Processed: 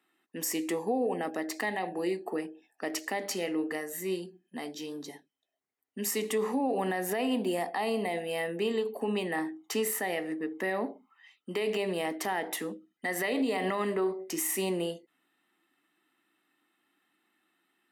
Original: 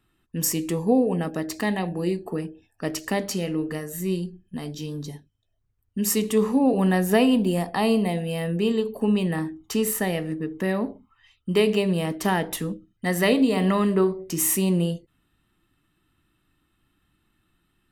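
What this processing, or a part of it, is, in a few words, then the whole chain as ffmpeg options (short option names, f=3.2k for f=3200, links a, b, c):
laptop speaker: -af "highpass=f=260:w=0.5412,highpass=f=260:w=1.3066,equalizer=f=770:t=o:w=0.38:g=6.5,equalizer=f=2k:t=o:w=0.34:g=8,alimiter=limit=-18dB:level=0:latency=1:release=70,volume=-3.5dB"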